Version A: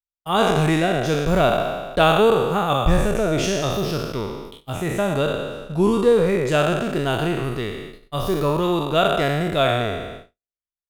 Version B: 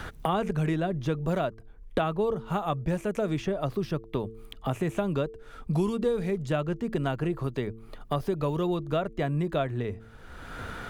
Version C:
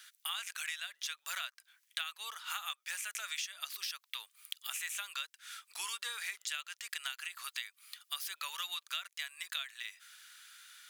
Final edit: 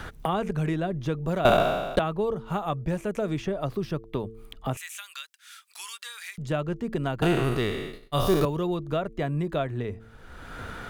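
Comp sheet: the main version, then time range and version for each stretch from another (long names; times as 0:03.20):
B
0:01.45–0:01.99: punch in from A
0:04.77–0:06.38: punch in from C
0:07.22–0:08.45: punch in from A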